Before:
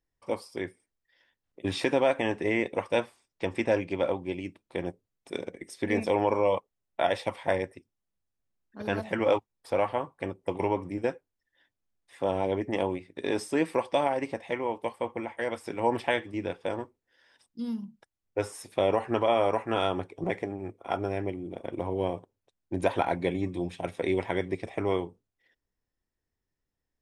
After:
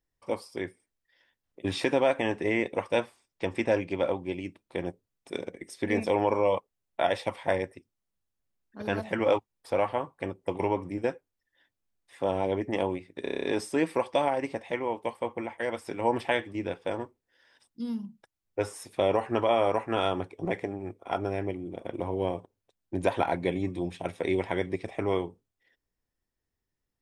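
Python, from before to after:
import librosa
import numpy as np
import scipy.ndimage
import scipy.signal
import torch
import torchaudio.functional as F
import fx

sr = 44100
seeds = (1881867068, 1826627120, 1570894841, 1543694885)

y = fx.edit(x, sr, fx.stutter(start_s=13.23, slice_s=0.03, count=8), tone=tone)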